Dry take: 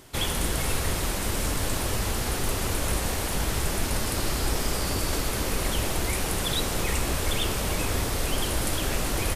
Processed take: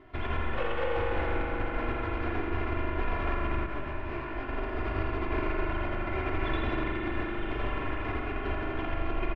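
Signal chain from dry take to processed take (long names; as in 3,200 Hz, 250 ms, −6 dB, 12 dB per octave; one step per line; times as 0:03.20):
loose part that buzzes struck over −28 dBFS, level −25 dBFS
low-pass filter 2,300 Hz 24 dB per octave
comb filter 2.9 ms, depth 98%
compressor whose output falls as the input rises −25 dBFS, ratio −0.5
flanger 0.66 Hz, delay 8 ms, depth 1.8 ms, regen −69%
0:00.54–0:00.97: frequency shifter +460 Hz
echo with a time of its own for lows and highs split 540 Hz, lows 234 ms, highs 83 ms, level −6.5 dB
convolution reverb RT60 4.3 s, pre-delay 40 ms, DRR −2 dB
0:03.66–0:04.49: micro pitch shift up and down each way 49 cents
level −4.5 dB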